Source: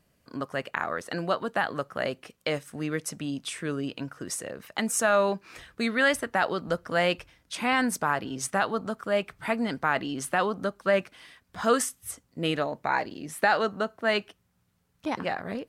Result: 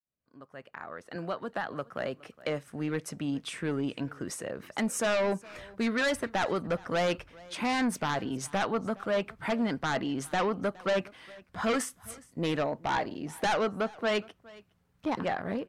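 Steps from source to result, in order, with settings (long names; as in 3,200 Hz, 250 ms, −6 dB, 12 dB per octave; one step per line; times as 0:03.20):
fade in at the beginning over 3.48 s
high-shelf EQ 3,500 Hz −9.5 dB
in parallel at −8 dB: sine wavefolder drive 11 dB, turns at −12 dBFS
on the sum: pitch vibrato 6.3 Hz 22 cents
on a send: single-tap delay 415 ms −22.5 dB
0:01.15–0:02.68: on the sum: multiband upward and downward compressor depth 40%
level −8.5 dB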